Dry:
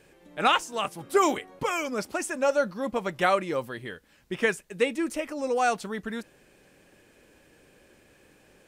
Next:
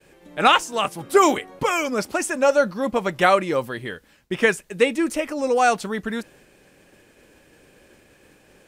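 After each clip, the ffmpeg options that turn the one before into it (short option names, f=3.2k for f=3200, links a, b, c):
-af "agate=range=-33dB:threshold=-55dB:ratio=3:detection=peak,volume=6.5dB"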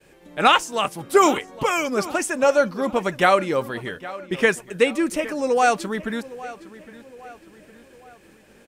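-filter_complex "[0:a]asplit=2[a][b];[b]adelay=812,lowpass=f=4.2k:p=1,volume=-17dB,asplit=2[c][d];[d]adelay=812,lowpass=f=4.2k:p=1,volume=0.47,asplit=2[e][f];[f]adelay=812,lowpass=f=4.2k:p=1,volume=0.47,asplit=2[g][h];[h]adelay=812,lowpass=f=4.2k:p=1,volume=0.47[i];[a][c][e][g][i]amix=inputs=5:normalize=0"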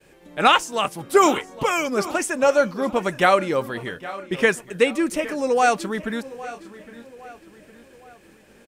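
-af "aecho=1:1:842:0.0794"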